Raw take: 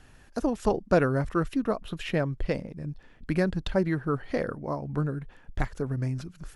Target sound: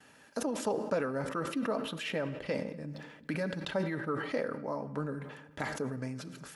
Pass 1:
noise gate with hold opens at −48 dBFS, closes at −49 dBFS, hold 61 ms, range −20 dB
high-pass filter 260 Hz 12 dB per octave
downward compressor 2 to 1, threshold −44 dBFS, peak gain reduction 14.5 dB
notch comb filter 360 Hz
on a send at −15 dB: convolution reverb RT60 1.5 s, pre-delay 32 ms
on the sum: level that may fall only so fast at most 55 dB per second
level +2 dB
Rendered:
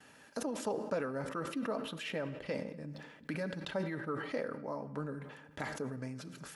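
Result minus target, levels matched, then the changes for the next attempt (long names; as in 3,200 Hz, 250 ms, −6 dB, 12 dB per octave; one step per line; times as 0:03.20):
downward compressor: peak gain reduction +4 dB
change: downward compressor 2 to 1, threshold −36.5 dBFS, peak gain reduction 11 dB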